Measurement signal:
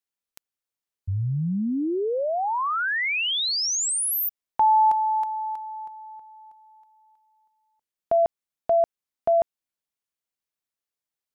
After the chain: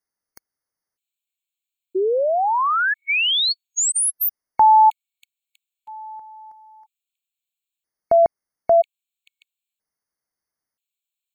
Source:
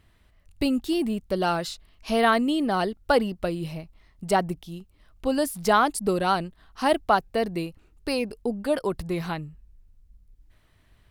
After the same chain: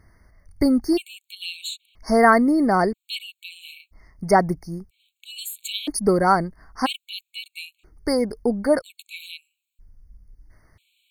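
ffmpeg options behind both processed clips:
-af "afftfilt=real='re*gt(sin(2*PI*0.51*pts/sr)*(1-2*mod(floor(b*sr/1024/2200),2)),0)':imag='im*gt(sin(2*PI*0.51*pts/sr)*(1-2*mod(floor(b*sr/1024/2200),2)),0)':win_size=1024:overlap=0.75,volume=2"

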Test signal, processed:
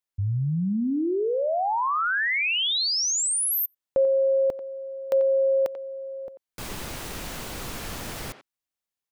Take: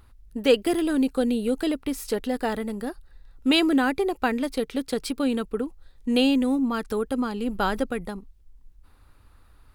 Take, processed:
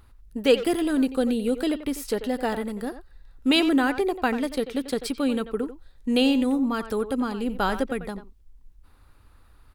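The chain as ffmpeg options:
-filter_complex "[0:a]asplit=2[s0][s1];[s1]adelay=90,highpass=300,lowpass=3400,asoftclip=type=hard:threshold=0.168,volume=0.282[s2];[s0][s2]amix=inputs=2:normalize=0"

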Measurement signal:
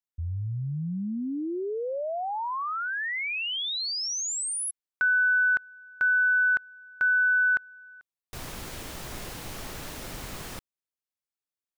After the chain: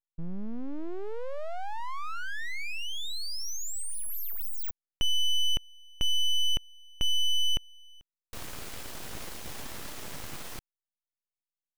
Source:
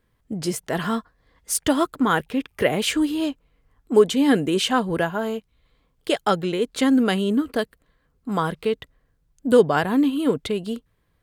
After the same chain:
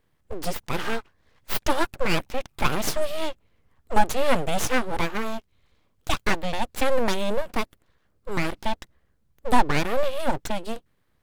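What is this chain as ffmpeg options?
-af "aeval=exprs='abs(val(0))':c=same"

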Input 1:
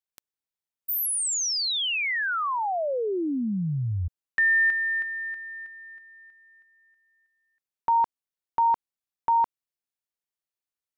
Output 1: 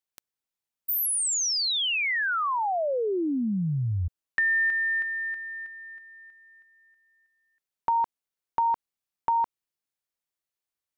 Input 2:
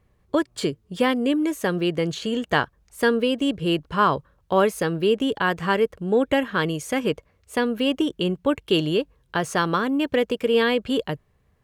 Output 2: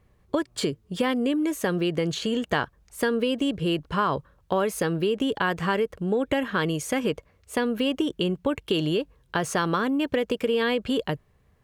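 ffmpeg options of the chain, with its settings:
-af "acompressor=threshold=0.0562:ratio=6:attack=41:release=56:knee=6:detection=rms,volume=1.19"

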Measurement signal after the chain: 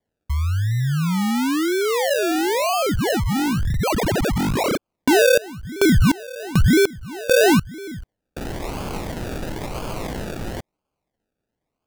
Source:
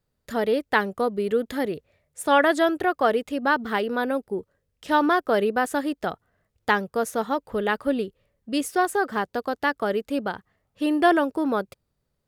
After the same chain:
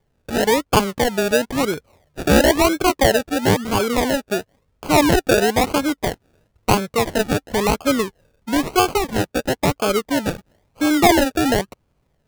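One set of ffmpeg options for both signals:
-filter_complex "[0:a]asplit=2[s0][s1];[s1]acompressor=threshold=0.0158:ratio=6,volume=1.12[s2];[s0][s2]amix=inputs=2:normalize=0,acrusher=samples=33:mix=1:aa=0.000001:lfo=1:lforange=19.8:lforate=0.99,volume=1.58"

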